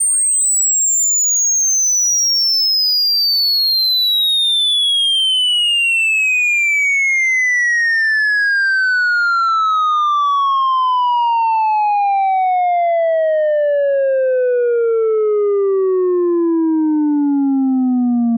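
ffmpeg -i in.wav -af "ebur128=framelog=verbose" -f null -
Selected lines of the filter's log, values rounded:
Integrated loudness:
  I:         -12.9 LUFS
  Threshold: -22.9 LUFS
Loudness range:
  LRA:         4.0 LU
  Threshold: -32.9 LUFS
  LRA low:   -15.2 LUFS
  LRA high:  -11.2 LUFS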